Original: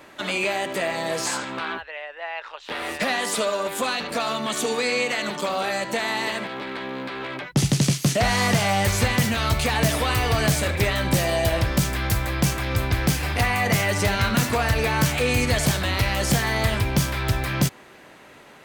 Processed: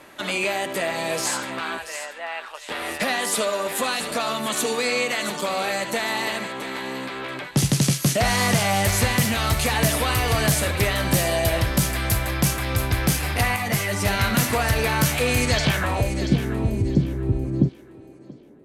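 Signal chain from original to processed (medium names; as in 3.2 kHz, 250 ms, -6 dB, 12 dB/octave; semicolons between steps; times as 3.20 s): low-pass sweep 12 kHz -> 330 Hz, 15.41–16.14 s; on a send: thinning echo 683 ms, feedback 30%, high-pass 940 Hz, level -10 dB; 13.56–14.06 s: on the sum: three-phase chorus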